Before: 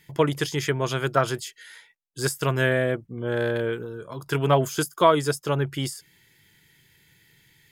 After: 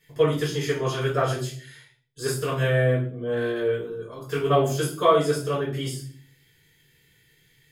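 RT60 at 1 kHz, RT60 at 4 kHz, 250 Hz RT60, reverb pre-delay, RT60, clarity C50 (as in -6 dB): 0.40 s, 0.40 s, 0.70 s, 4 ms, 0.50 s, 7.0 dB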